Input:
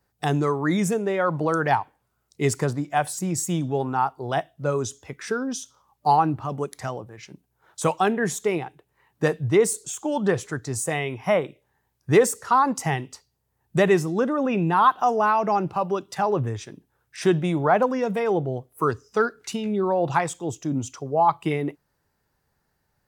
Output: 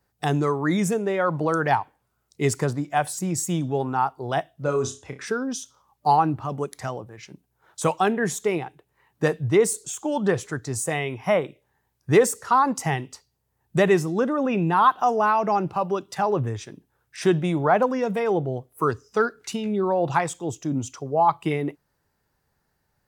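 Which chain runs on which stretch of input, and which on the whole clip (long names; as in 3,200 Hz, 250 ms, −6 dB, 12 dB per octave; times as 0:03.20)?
0:04.63–0:05.26: low-pass filter 10,000 Hz + flutter between parallel walls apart 5.3 metres, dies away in 0.26 s
whole clip: no processing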